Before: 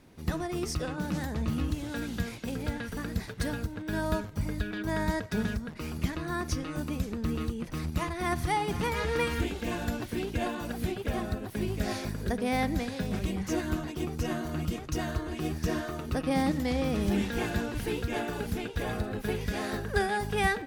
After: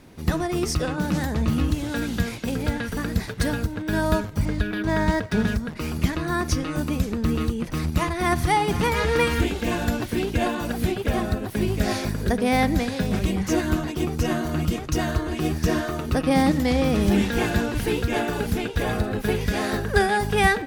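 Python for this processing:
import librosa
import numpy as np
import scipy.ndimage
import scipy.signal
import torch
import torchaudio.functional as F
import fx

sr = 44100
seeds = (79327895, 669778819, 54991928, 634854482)

y = fx.resample_linear(x, sr, factor=3, at=(4.45, 5.47))
y = F.gain(torch.from_numpy(y), 8.0).numpy()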